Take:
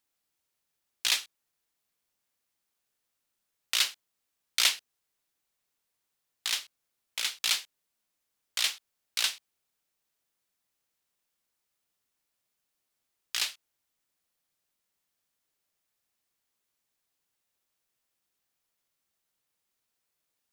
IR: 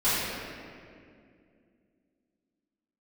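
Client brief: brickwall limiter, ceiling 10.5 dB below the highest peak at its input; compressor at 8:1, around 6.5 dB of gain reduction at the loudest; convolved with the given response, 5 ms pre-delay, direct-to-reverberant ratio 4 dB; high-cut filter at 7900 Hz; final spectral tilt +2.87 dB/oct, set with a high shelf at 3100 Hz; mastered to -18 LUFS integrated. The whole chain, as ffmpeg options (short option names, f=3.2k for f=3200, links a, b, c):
-filter_complex "[0:a]lowpass=7.9k,highshelf=f=3.1k:g=-6,acompressor=threshold=-30dB:ratio=8,alimiter=level_in=1.5dB:limit=-24dB:level=0:latency=1,volume=-1.5dB,asplit=2[a][b];[1:a]atrim=start_sample=2205,adelay=5[c];[b][c]afir=irnorm=-1:irlink=0,volume=-19dB[d];[a][d]amix=inputs=2:normalize=0,volume=23.5dB"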